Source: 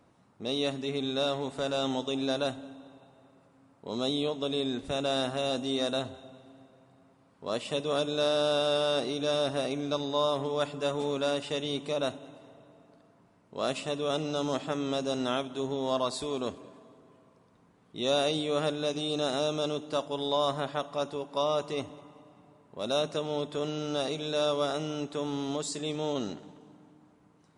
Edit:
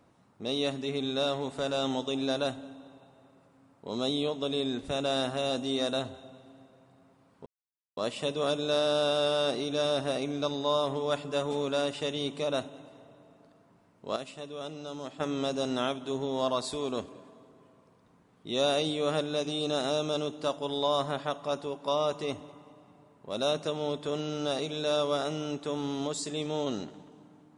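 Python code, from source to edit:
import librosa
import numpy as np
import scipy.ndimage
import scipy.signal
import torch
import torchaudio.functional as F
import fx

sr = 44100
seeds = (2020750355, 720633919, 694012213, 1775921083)

y = fx.edit(x, sr, fx.insert_silence(at_s=7.46, length_s=0.51),
    fx.clip_gain(start_s=13.65, length_s=1.04, db=-9.0), tone=tone)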